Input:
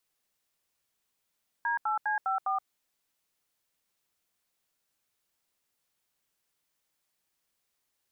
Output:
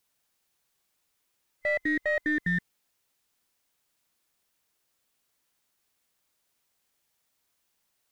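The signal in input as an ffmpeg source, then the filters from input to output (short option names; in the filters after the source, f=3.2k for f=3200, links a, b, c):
-f lavfi -i "aevalsrc='0.0355*clip(min(mod(t,0.203),0.124-mod(t,0.203))/0.002,0,1)*(eq(floor(t/0.203),0)*(sin(2*PI*941*mod(t,0.203))+sin(2*PI*1633*mod(t,0.203)))+eq(floor(t/0.203),1)*(sin(2*PI*852*mod(t,0.203))+sin(2*PI*1336*mod(t,0.203)))+eq(floor(t/0.203),2)*(sin(2*PI*852*mod(t,0.203))+sin(2*PI*1633*mod(t,0.203)))+eq(floor(t/0.203),3)*(sin(2*PI*770*mod(t,0.203))+sin(2*PI*1336*mod(t,0.203)))+eq(floor(t/0.203),4)*(sin(2*PI*770*mod(t,0.203))+sin(2*PI*1209*mod(t,0.203))))':d=1.015:s=44100"
-filter_complex "[0:a]afftfilt=real='real(if(lt(b,960),b+48*(1-2*mod(floor(b/48),2)),b),0)':imag='imag(if(lt(b,960),b+48*(1-2*mod(floor(b/48),2)),b),0)':win_size=2048:overlap=0.75,asplit=2[a][b];[b]aeval=exprs='clip(val(0),-1,0.0211)':c=same,volume=-5dB[c];[a][c]amix=inputs=2:normalize=0"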